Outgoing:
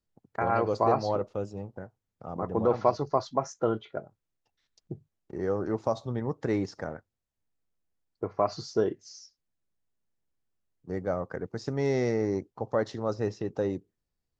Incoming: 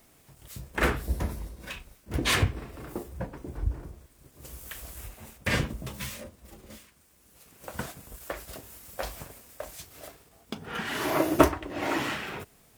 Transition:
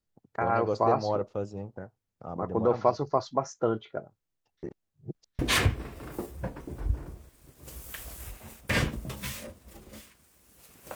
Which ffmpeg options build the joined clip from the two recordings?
-filter_complex "[0:a]apad=whole_dur=10.95,atrim=end=10.95,asplit=2[a][b];[a]atrim=end=4.632[c];[b]atrim=start=4.628:end=5.392,asetpts=PTS-STARTPTS,areverse[d];[1:a]atrim=start=2.158:end=7.72[e];[c][d]acrossfade=d=0.004:c1=hsin:c2=hsin[f];[f][e]acrossfade=d=0.004:c1=hsin:c2=hsin"

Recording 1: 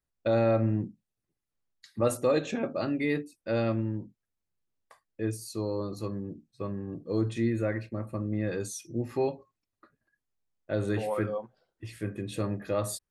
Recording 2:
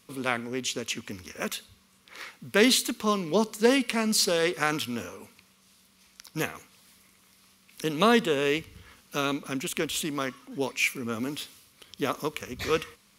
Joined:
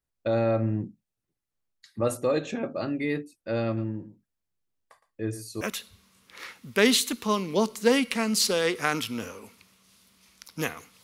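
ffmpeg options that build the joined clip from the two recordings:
-filter_complex "[0:a]asplit=3[a][b][c];[a]afade=t=out:st=3.76:d=0.02[d];[b]aecho=1:1:114:0.2,afade=t=in:st=3.76:d=0.02,afade=t=out:st=5.61:d=0.02[e];[c]afade=t=in:st=5.61:d=0.02[f];[d][e][f]amix=inputs=3:normalize=0,apad=whole_dur=11.03,atrim=end=11.03,atrim=end=5.612[g];[1:a]atrim=start=1.388:end=6.81[h];[g][h]acrossfade=d=0.004:c1=hsin:c2=hsin"

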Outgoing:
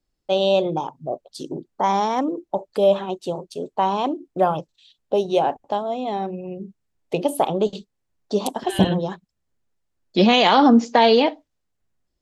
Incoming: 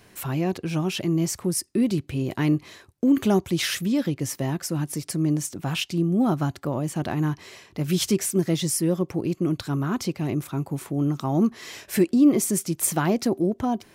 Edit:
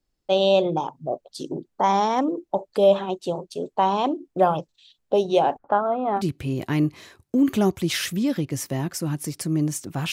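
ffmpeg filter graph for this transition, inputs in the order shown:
-filter_complex "[0:a]asettb=1/sr,asplit=3[a][b][c];[a]atrim=end=5.584[d];[b]atrim=start=5.58:end=6.22,asetpts=PTS-STARTPTS,afade=t=in:d=0.004:c=qsin,afade=t=out:st=0.636:d=0.004:c=qsin,lowpass=f=1.4k:t=q:w=6.5[e];[c]atrim=start=6.216[f];[d][e]acrossfade=d=0.004:c1=hsin:c2=qsin[g];[g][f]acrossfade=d=0.004:c1=qsin:c2=hsin,apad=whole_dur=10.12,atrim=end=10.12,atrim=end=6.22,asetpts=PTS-STARTPTS[h];[1:a]atrim=start=1.85:end=5.81,asetpts=PTS-STARTPTS[i];[h][i]acrossfade=d=0.06:c1=tri:c2=tri"

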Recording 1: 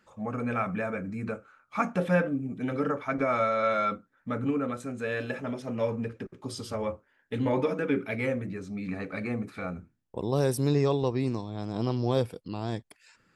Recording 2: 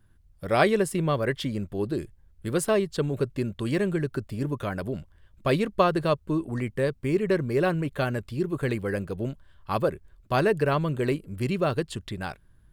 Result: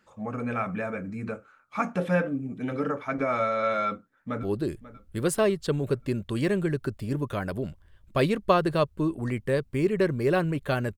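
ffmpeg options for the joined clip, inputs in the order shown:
-filter_complex "[0:a]apad=whole_dur=10.97,atrim=end=10.97,atrim=end=4.432[a];[1:a]atrim=start=1.728:end=8.27[b];[a][b]acrossfade=d=0.004:c1=hsin:c2=hsin,asplit=2[c][d];[d]afade=t=in:st=3.86:d=0.01,afade=t=out:st=4.43:d=0.01,aecho=0:1:540|1080|1620|2160:0.158489|0.0633957|0.0253583|0.0101433[e];[c][e]amix=inputs=2:normalize=0"

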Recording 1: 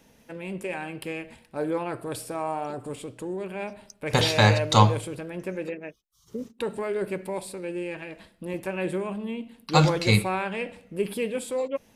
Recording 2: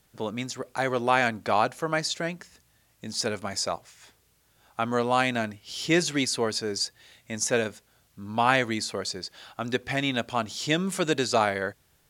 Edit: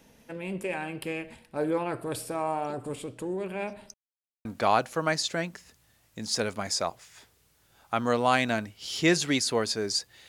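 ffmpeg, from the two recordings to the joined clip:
-filter_complex "[0:a]apad=whole_dur=10.28,atrim=end=10.28,asplit=2[a][b];[a]atrim=end=3.94,asetpts=PTS-STARTPTS,afade=t=out:st=3.936:d=0.004:c=hsin[c];[b]atrim=start=3.94:end=4.45,asetpts=PTS-STARTPTS,volume=0[d];[1:a]atrim=start=1.31:end=7.14,asetpts=PTS-STARTPTS,afade=t=in:d=0.004:c=hsin[e];[c][d][e]concat=n=3:v=0:a=1"

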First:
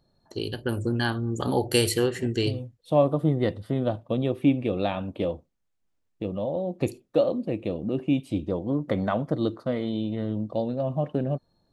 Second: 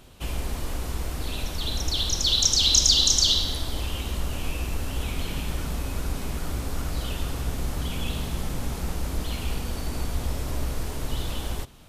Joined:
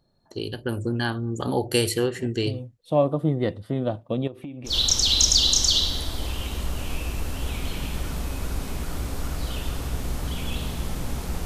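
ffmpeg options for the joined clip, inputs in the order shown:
-filter_complex "[0:a]asettb=1/sr,asplit=3[a][b][c];[a]atrim=end=4.274[d];[b]atrim=start=4.27:end=4.76,asetpts=PTS-STARTPTS,afade=t=in:d=0.004:c=qsin,afade=t=out:st=0.486:d=0.004:c=qsin,acompressor=threshold=-32dB:ratio=16:attack=3.2:release=140:knee=1:detection=peak[e];[c]atrim=start=4.756[f];[d][e]acrossfade=d=0.004:c1=hsin:c2=qsin[g];[g][f]acrossfade=d=0.004:c1=qsin:c2=hsin,apad=whole_dur=11.45,atrim=end=11.45,atrim=end=4.76,asetpts=PTS-STARTPTS[h];[1:a]atrim=start=2.18:end=8.99,asetpts=PTS-STARTPTS[i];[h][i]acrossfade=d=0.12:c1=tri:c2=tri"

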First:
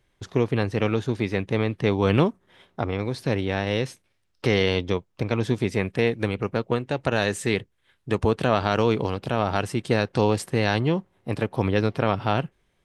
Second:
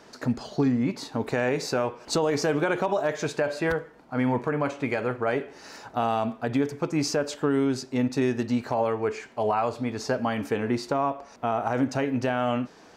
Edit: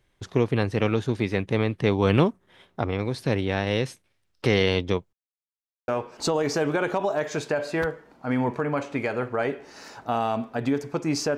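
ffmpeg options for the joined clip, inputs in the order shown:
-filter_complex "[0:a]apad=whole_dur=11.37,atrim=end=11.37,asplit=2[a][b];[a]atrim=end=5.13,asetpts=PTS-STARTPTS,afade=t=out:st=5.126:d=0.004:c=hsin[c];[b]atrim=start=5.13:end=5.88,asetpts=PTS-STARTPTS,volume=0[d];[1:a]atrim=start=1.76:end=7.25,asetpts=PTS-STARTPTS,afade=t=in:d=0.004:c=hsin[e];[c][d][e]concat=n=3:v=0:a=1"

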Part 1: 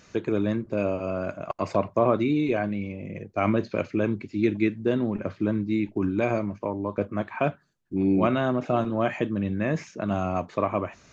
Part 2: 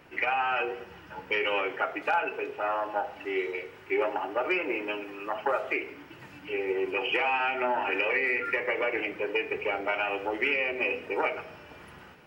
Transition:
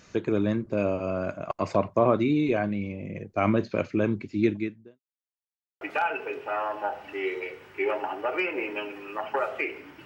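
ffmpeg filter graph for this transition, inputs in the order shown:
-filter_complex "[0:a]apad=whole_dur=10.05,atrim=end=10.05,asplit=2[a][b];[a]atrim=end=5,asetpts=PTS-STARTPTS,afade=t=out:st=4.46:d=0.54:c=qua[c];[b]atrim=start=5:end=5.81,asetpts=PTS-STARTPTS,volume=0[d];[1:a]atrim=start=1.93:end=6.17,asetpts=PTS-STARTPTS,afade=t=in:d=0.004:c=hsin[e];[c][d][e]concat=n=3:v=0:a=1"

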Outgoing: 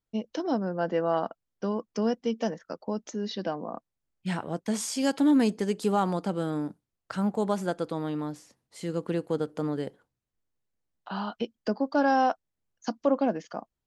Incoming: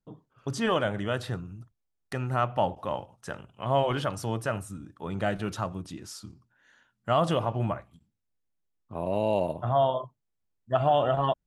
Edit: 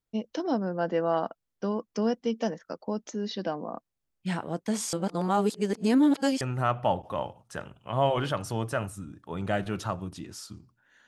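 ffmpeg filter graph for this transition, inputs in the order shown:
-filter_complex "[0:a]apad=whole_dur=11.07,atrim=end=11.07,asplit=2[a][b];[a]atrim=end=4.932[c];[b]atrim=start=4.928:end=6.412,asetpts=PTS-STARTPTS,areverse[d];[1:a]atrim=start=2.138:end=6.8[e];[c][d]acrossfade=d=0.004:c1=hsin:c2=hsin[f];[f][e]acrossfade=d=0.004:c1=hsin:c2=hsin"

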